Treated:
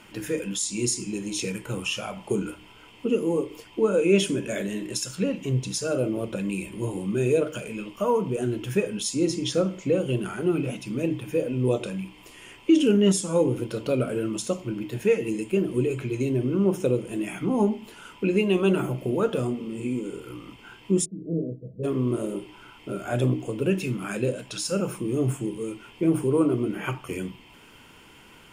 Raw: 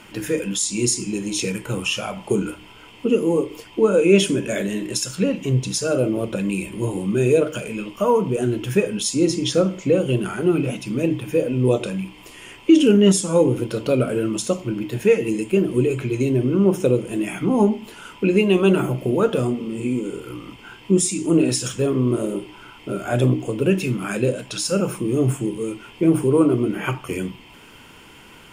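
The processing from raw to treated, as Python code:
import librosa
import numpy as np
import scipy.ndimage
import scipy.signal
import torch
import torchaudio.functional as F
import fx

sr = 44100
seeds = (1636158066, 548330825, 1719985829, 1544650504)

y = fx.cheby_ripple(x, sr, hz=670.0, ripple_db=9, at=(21.04, 21.83), fade=0.02)
y = y * 10.0 ** (-5.5 / 20.0)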